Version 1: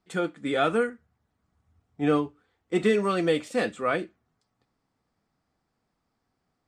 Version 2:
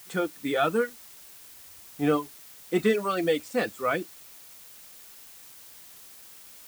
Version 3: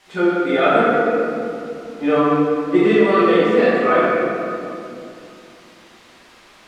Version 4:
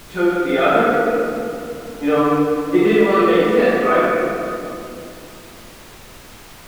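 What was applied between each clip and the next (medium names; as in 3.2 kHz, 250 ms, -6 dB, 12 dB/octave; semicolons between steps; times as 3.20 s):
reverb removal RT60 1.1 s; added noise blue -50 dBFS; bit crusher 8-bit
low-pass 6.5 kHz 12 dB/octave; tone controls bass -7 dB, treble -10 dB; reverberation RT60 2.7 s, pre-delay 5 ms, DRR -10.5 dB; trim +1.5 dB
added noise pink -41 dBFS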